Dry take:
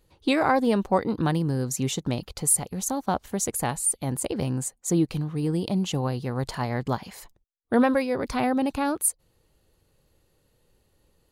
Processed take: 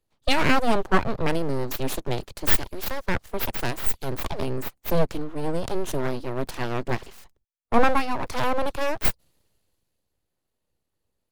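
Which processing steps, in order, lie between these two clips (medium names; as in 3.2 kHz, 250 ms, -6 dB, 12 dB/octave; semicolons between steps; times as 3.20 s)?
full-wave rectifier; three bands expanded up and down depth 40%; trim +3 dB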